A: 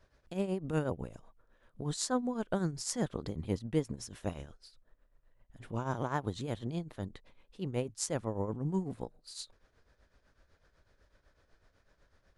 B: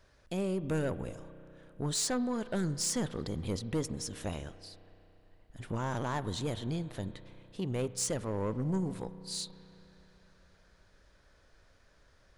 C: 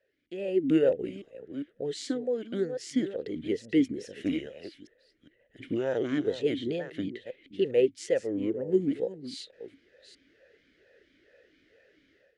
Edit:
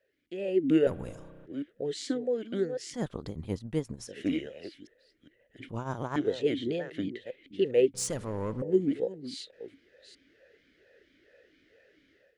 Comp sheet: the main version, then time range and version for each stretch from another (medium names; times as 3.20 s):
C
0.87–1.46 s: from B
2.94–4.08 s: from A
5.69–6.16 s: from A
7.94–8.62 s: from B